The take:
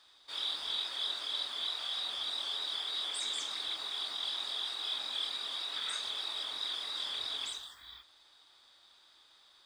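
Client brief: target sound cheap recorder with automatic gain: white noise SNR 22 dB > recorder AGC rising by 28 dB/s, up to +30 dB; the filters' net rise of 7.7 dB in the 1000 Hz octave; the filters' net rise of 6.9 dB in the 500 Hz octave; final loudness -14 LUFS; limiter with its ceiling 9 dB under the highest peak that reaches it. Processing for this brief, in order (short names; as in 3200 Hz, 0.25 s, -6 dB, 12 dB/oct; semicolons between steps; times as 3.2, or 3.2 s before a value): bell 500 Hz +6 dB; bell 1000 Hz +8 dB; limiter -31.5 dBFS; white noise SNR 22 dB; recorder AGC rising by 28 dB/s, up to +30 dB; gain +25 dB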